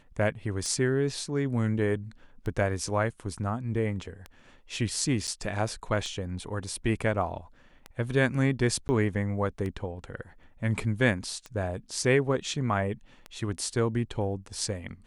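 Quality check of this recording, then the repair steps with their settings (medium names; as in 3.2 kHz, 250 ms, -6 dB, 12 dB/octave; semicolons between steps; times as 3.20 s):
tick 33 1/3 rpm -23 dBFS
5.27–5.28 s: dropout 7.3 ms
8.88–8.89 s: dropout 10 ms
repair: de-click; interpolate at 5.27 s, 7.3 ms; interpolate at 8.88 s, 10 ms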